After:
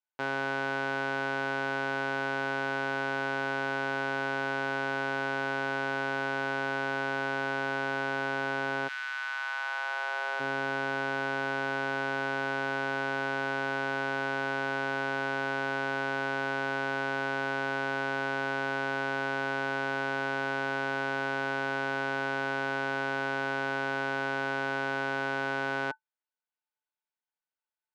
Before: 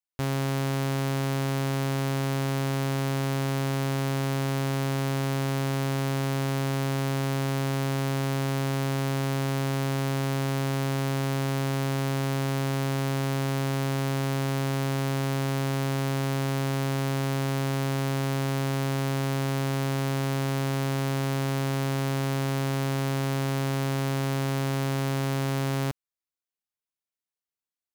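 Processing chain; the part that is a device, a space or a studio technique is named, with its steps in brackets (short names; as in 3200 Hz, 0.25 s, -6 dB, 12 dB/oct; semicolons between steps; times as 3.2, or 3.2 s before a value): 8.87–10.39 HPF 1500 Hz -> 500 Hz 24 dB/oct; tin-can telephone (BPF 410–3100 Hz; small resonant body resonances 880/1500 Hz, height 15 dB, ringing for 95 ms)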